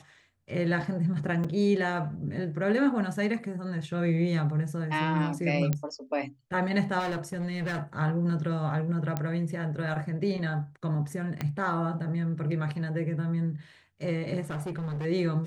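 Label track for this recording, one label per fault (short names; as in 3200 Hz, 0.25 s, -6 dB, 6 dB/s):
1.440000	1.450000	gap 5.4 ms
5.730000	5.730000	pop -15 dBFS
6.990000	7.820000	clipped -28 dBFS
9.170000	9.170000	pop -16 dBFS
11.410000	11.410000	pop -17 dBFS
14.410000	15.060000	clipped -30.5 dBFS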